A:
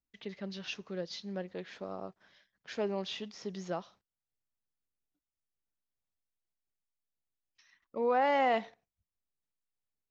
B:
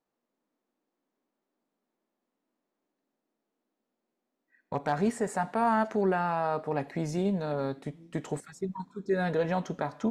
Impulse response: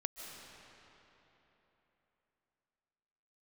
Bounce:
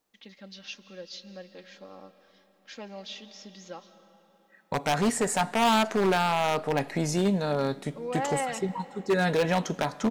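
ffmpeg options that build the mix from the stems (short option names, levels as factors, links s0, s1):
-filter_complex "[0:a]aecho=1:1:3.7:0.65,volume=0.299,asplit=2[s0][s1];[s1]volume=0.531[s2];[1:a]aeval=exprs='0.0841*(abs(mod(val(0)/0.0841+3,4)-2)-1)':c=same,volume=1.41,asplit=2[s3][s4];[s4]volume=0.0891[s5];[2:a]atrim=start_sample=2205[s6];[s2][s5]amix=inputs=2:normalize=0[s7];[s7][s6]afir=irnorm=-1:irlink=0[s8];[s0][s3][s8]amix=inputs=3:normalize=0,highshelf=f=2400:g=9.5"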